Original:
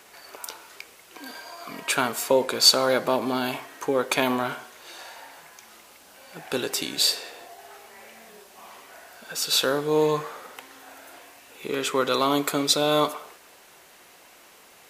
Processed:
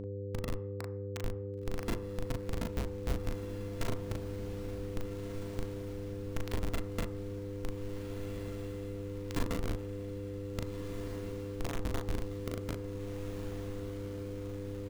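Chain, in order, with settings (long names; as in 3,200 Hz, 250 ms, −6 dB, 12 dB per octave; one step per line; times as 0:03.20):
samples sorted by size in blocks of 64 samples
treble cut that deepens with the level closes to 1,500 Hz, closed at −20.5 dBFS
brickwall limiter −18 dBFS, peak gain reduction 11.5 dB
downward compressor 5 to 1, threshold −42 dBFS, peak gain reduction 17 dB
comparator with hysteresis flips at −34 dBFS
hum removal 74.23 Hz, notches 17
hum with harmonics 100 Hz, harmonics 5, −56 dBFS −3 dB per octave
double-tracking delay 38 ms −3 dB
feedback delay with all-pass diffusion 1,614 ms, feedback 61%, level −9 dB
on a send at −13 dB: convolution reverb RT60 0.60 s, pre-delay 3 ms
on the sum: one half of a high-frequency compander encoder only
level +14.5 dB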